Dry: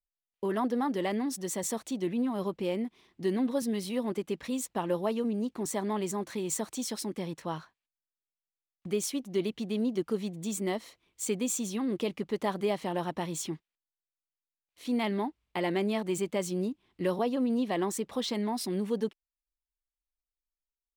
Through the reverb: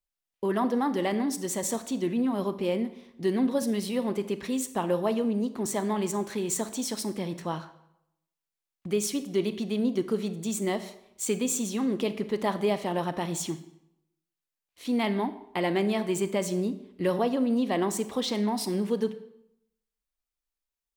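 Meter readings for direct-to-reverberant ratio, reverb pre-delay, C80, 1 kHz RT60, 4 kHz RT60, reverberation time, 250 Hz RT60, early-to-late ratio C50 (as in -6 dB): 11.0 dB, 31 ms, 15.5 dB, 0.80 s, 0.60 s, 0.80 s, 0.85 s, 13.5 dB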